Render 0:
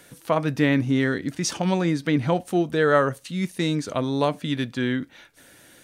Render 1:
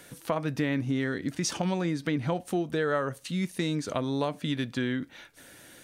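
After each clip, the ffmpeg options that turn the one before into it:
ffmpeg -i in.wav -af "acompressor=threshold=-27dB:ratio=3" out.wav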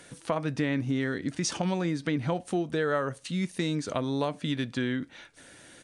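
ffmpeg -i in.wav -af "aresample=22050,aresample=44100" out.wav

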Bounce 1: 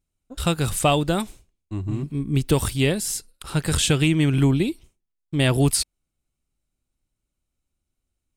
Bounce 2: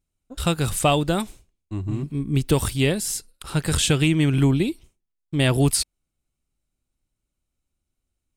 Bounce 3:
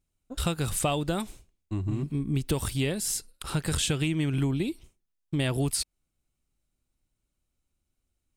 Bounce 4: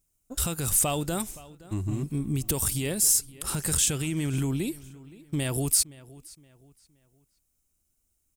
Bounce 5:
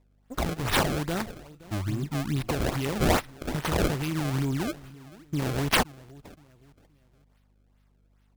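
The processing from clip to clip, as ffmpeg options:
ffmpeg -i in.wav -af anull out.wav
ffmpeg -i in.wav -af "acompressor=threshold=-26dB:ratio=3" out.wav
ffmpeg -i in.wav -filter_complex "[0:a]alimiter=limit=-19.5dB:level=0:latency=1:release=16,aexciter=amount=1.9:drive=9.4:freq=5500,asplit=2[link_01][link_02];[link_02]adelay=520,lowpass=frequency=4500:poles=1,volume=-19.5dB,asplit=2[link_03][link_04];[link_04]adelay=520,lowpass=frequency=4500:poles=1,volume=0.36,asplit=2[link_05][link_06];[link_06]adelay=520,lowpass=frequency=4500:poles=1,volume=0.36[link_07];[link_01][link_03][link_05][link_07]amix=inputs=4:normalize=0" out.wav
ffmpeg -i in.wav -af "acrusher=samples=27:mix=1:aa=0.000001:lfo=1:lforange=43.2:lforate=2.4,aeval=exprs='val(0)+0.000708*(sin(2*PI*50*n/s)+sin(2*PI*2*50*n/s)/2+sin(2*PI*3*50*n/s)/3+sin(2*PI*4*50*n/s)/4+sin(2*PI*5*50*n/s)/5)':channel_layout=same" out.wav

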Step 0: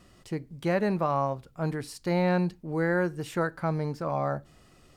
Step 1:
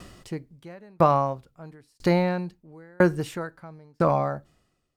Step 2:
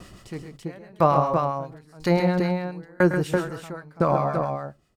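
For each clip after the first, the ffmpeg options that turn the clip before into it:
ffmpeg -i in.wav -filter_complex "[0:a]asplit=2[link_01][link_02];[link_02]alimiter=limit=-23dB:level=0:latency=1,volume=0dB[link_03];[link_01][link_03]amix=inputs=2:normalize=0,aeval=exprs='val(0)*pow(10,-39*if(lt(mod(1*n/s,1),2*abs(1)/1000),1-mod(1*n/s,1)/(2*abs(1)/1000),(mod(1*n/s,1)-2*abs(1)/1000)/(1-2*abs(1)/1000))/20)':channel_layout=same,volume=7.5dB" out.wav
ffmpeg -i in.wav -filter_complex "[0:a]aecho=1:1:106|133|334:0.251|0.398|0.562,acrossover=split=1000[link_01][link_02];[link_01]aeval=exprs='val(0)*(1-0.5/2+0.5/2*cos(2*PI*7.5*n/s))':channel_layout=same[link_03];[link_02]aeval=exprs='val(0)*(1-0.5/2-0.5/2*cos(2*PI*7.5*n/s))':channel_layout=same[link_04];[link_03][link_04]amix=inputs=2:normalize=0,volume=2.5dB" out.wav

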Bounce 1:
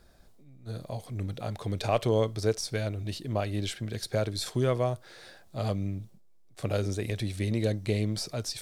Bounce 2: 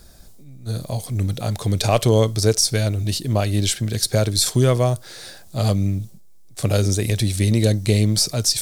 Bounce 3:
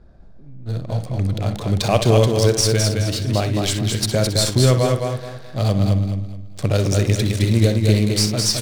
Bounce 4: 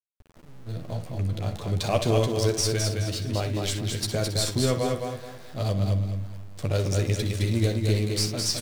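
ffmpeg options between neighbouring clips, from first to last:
ffmpeg -i in.wav -af "bass=frequency=250:gain=5,treble=frequency=4000:gain=12,volume=7.5dB" out.wav
ffmpeg -i in.wav -filter_complex "[0:a]asplit=2[link_01][link_02];[link_02]aecho=0:1:47|62:0.133|0.299[link_03];[link_01][link_03]amix=inputs=2:normalize=0,adynamicsmooth=sensitivity=7.5:basefreq=1100,asplit=2[link_04][link_05];[link_05]aecho=0:1:213|426|639|852:0.631|0.196|0.0606|0.0188[link_06];[link_04][link_06]amix=inputs=2:normalize=0" out.wav
ffmpeg -i in.wav -filter_complex "[0:a]aeval=exprs='val(0)*gte(abs(val(0)),0.0133)':channel_layout=same,asplit=2[link_01][link_02];[link_02]adelay=12,volume=-7dB[link_03];[link_01][link_03]amix=inputs=2:normalize=0,volume=-8dB" out.wav

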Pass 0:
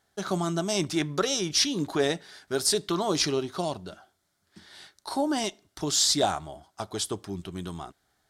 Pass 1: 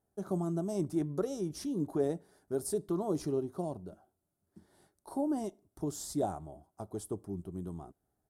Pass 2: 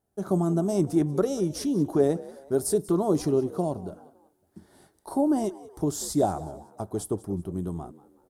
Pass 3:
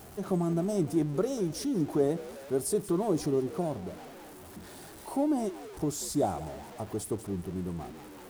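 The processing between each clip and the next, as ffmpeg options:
ffmpeg -i in.wav -af "firequalizer=gain_entry='entry(350,0);entry(1600,-18);entry(2500,-24);entry(3800,-25);entry(10000,-5)':delay=0.05:min_phase=1,volume=-4dB" out.wav
ffmpeg -i in.wav -filter_complex "[0:a]dynaudnorm=framelen=120:gausssize=3:maxgain=7dB,asplit=4[link_01][link_02][link_03][link_04];[link_02]adelay=187,afreqshift=63,volume=-19dB[link_05];[link_03]adelay=374,afreqshift=126,volume=-27.4dB[link_06];[link_04]adelay=561,afreqshift=189,volume=-35.8dB[link_07];[link_01][link_05][link_06][link_07]amix=inputs=4:normalize=0,volume=2dB" out.wav
ffmpeg -i in.wav -af "aeval=exprs='val(0)+0.5*0.0133*sgn(val(0))':channel_layout=same,volume=-5dB" out.wav

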